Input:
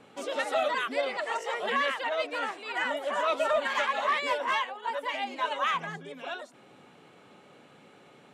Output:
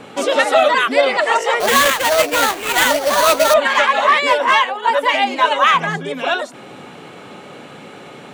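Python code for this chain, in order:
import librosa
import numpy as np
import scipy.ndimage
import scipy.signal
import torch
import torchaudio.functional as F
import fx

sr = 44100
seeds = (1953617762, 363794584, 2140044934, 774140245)

p1 = fx.rider(x, sr, range_db=5, speed_s=0.5)
p2 = x + F.gain(torch.from_numpy(p1), 2.5).numpy()
p3 = fx.sample_hold(p2, sr, seeds[0], rate_hz=5200.0, jitter_pct=20, at=(1.6, 3.54))
y = F.gain(torch.from_numpy(p3), 8.0).numpy()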